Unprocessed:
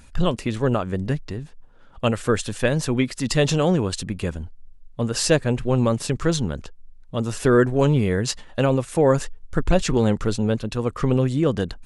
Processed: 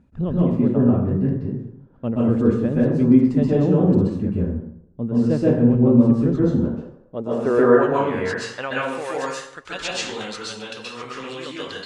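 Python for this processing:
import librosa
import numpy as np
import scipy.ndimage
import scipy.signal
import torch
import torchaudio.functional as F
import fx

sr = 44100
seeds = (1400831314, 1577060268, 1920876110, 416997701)

y = fx.rev_plate(x, sr, seeds[0], rt60_s=0.74, hf_ratio=0.6, predelay_ms=115, drr_db=-6.5)
y = fx.filter_sweep_bandpass(y, sr, from_hz=220.0, to_hz=3300.0, start_s=6.4, end_s=9.42, q=1.1)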